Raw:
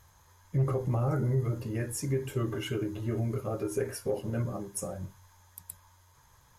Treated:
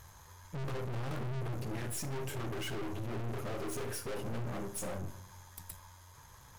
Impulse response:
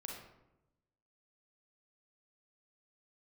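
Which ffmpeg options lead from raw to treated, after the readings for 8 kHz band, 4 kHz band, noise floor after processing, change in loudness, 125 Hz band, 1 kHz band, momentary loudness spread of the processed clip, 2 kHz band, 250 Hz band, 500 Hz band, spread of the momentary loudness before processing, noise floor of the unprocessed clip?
-3.0 dB, -0.5 dB, -56 dBFS, -7.5 dB, -8.5 dB, -2.0 dB, 14 LU, 0.0 dB, -7.5 dB, -8.0 dB, 17 LU, -61 dBFS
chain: -filter_complex "[0:a]aeval=exprs='(tanh(200*val(0)+0.6)-tanh(0.6))/200':c=same,asplit=2[a][b];[1:a]atrim=start_sample=2205[c];[b][c]afir=irnorm=-1:irlink=0,volume=-6dB[d];[a][d]amix=inputs=2:normalize=0,volume=6dB"

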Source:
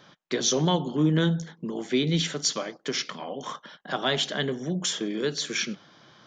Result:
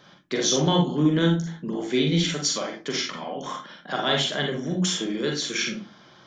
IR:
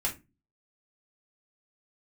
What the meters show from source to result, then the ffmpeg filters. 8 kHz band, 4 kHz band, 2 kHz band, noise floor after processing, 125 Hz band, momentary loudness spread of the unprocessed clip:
+1.5 dB, +2.5 dB, +2.5 dB, -52 dBFS, +2.0 dB, 12 LU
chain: -filter_complex "[0:a]asplit=2[a][b];[1:a]atrim=start_sample=2205,adelay=40[c];[b][c]afir=irnorm=-1:irlink=0,volume=-6dB[d];[a][d]amix=inputs=2:normalize=0"

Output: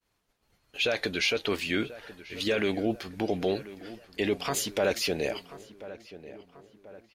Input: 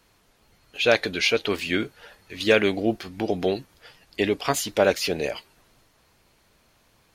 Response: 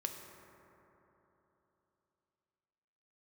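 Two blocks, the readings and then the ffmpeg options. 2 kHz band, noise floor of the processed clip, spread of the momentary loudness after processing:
-6.0 dB, -76 dBFS, 18 LU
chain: -filter_complex "[0:a]agate=range=-33dB:threshold=-53dB:ratio=3:detection=peak,alimiter=limit=-14dB:level=0:latency=1:release=11,asplit=2[a][b];[b]adelay=1037,lowpass=f=1.9k:p=1,volume=-15.5dB,asplit=2[c][d];[d]adelay=1037,lowpass=f=1.9k:p=1,volume=0.5,asplit=2[e][f];[f]adelay=1037,lowpass=f=1.9k:p=1,volume=0.5,asplit=2[g][h];[h]adelay=1037,lowpass=f=1.9k:p=1,volume=0.5,asplit=2[i][j];[j]adelay=1037,lowpass=f=1.9k:p=1,volume=0.5[k];[c][e][g][i][k]amix=inputs=5:normalize=0[l];[a][l]amix=inputs=2:normalize=0,volume=-2.5dB"

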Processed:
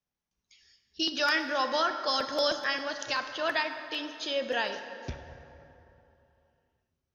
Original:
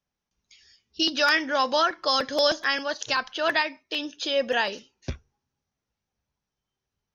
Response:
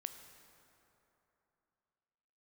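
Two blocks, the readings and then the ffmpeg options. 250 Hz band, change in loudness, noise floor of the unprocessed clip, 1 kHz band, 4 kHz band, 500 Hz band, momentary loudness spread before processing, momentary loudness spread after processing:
-5.0 dB, -5.5 dB, under -85 dBFS, -4.5 dB, -5.0 dB, -5.0 dB, 14 LU, 13 LU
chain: -filter_complex "[1:a]atrim=start_sample=2205[a];[0:a][a]afir=irnorm=-1:irlink=0,volume=-2dB"

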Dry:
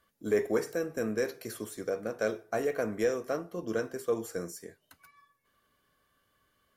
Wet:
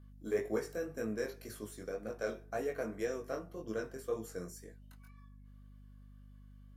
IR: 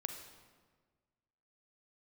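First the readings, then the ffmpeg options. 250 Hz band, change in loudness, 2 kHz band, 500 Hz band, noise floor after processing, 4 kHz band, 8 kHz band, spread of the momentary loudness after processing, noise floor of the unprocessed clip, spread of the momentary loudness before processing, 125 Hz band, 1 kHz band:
-6.5 dB, -6.5 dB, -6.5 dB, -7.0 dB, -55 dBFS, -7.0 dB, -7.0 dB, 21 LU, -74 dBFS, 9 LU, -4.0 dB, -6.5 dB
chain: -af "flanger=delay=18.5:depth=3.8:speed=1.9,aeval=exprs='val(0)+0.00316*(sin(2*PI*50*n/s)+sin(2*PI*2*50*n/s)/2+sin(2*PI*3*50*n/s)/3+sin(2*PI*4*50*n/s)/4+sin(2*PI*5*50*n/s)/5)':c=same,volume=-4dB"

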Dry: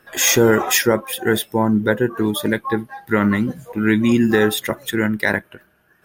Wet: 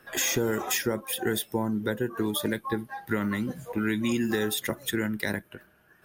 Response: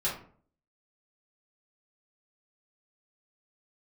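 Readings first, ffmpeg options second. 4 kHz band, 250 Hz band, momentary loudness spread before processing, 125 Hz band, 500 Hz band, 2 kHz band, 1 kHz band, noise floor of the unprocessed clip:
-8.5 dB, -10.5 dB, 8 LU, -10.5 dB, -11.5 dB, -11.0 dB, -11.0 dB, -59 dBFS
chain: -filter_complex "[0:a]acrossover=split=380|3900[a][b][c];[a]acompressor=threshold=-27dB:ratio=4[d];[b]acompressor=threshold=-30dB:ratio=4[e];[c]acompressor=threshold=-27dB:ratio=4[f];[d][e][f]amix=inputs=3:normalize=0,volume=-2dB"

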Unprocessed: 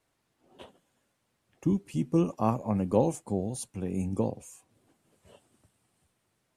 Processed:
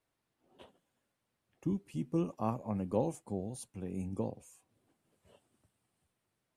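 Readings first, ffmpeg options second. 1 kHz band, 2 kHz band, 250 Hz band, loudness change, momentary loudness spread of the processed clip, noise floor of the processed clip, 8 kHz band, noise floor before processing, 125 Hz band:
-7.5 dB, -7.5 dB, -7.5 dB, -7.5 dB, 8 LU, -85 dBFS, -9.0 dB, -77 dBFS, -7.5 dB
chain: -af "equalizer=f=6.8k:w=1.6:g=-3,volume=-7.5dB"

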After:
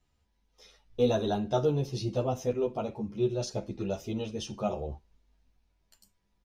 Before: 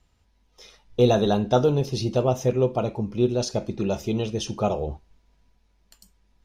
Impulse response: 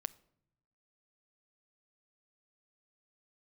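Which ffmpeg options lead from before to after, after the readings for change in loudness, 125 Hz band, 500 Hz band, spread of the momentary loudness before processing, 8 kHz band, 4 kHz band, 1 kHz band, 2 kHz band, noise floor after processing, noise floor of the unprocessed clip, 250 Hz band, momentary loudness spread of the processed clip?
-7.5 dB, -8.0 dB, -7.0 dB, 8 LU, -8.0 dB, -8.0 dB, -8.0 dB, -8.0 dB, -74 dBFS, -65 dBFS, -7.5 dB, 9 LU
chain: -filter_complex "[0:a]asplit=2[a][b];[b]adelay=10.7,afreqshift=-0.66[c];[a][c]amix=inputs=2:normalize=1,volume=-5dB"

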